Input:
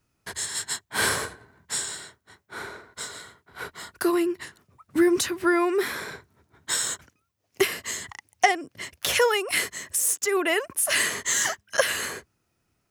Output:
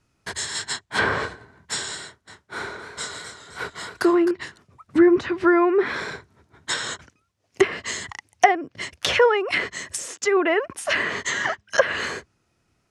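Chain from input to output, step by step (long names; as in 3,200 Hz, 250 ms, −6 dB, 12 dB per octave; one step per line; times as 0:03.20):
low-pass filter 8,500 Hz 12 dB per octave
treble cut that deepens with the level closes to 1,700 Hz, closed at −20 dBFS
0:02.02–0:04.31: feedback echo with a swinging delay time 258 ms, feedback 44%, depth 82 cents, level −9.5 dB
level +5 dB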